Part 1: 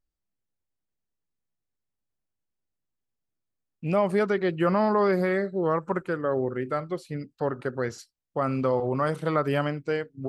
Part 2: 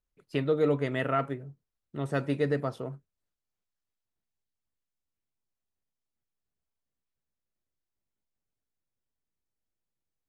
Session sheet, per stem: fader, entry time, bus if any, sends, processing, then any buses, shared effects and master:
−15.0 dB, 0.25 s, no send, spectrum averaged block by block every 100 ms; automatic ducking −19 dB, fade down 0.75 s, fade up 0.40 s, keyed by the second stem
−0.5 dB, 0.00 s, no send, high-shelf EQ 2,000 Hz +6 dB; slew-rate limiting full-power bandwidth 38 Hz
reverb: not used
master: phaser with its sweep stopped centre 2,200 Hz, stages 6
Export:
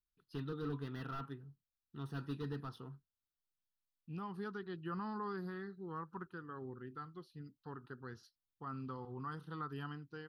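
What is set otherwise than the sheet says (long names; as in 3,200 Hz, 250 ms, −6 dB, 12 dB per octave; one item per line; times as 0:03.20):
stem 1: missing spectrum averaged block by block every 100 ms
stem 2 −0.5 dB → −9.5 dB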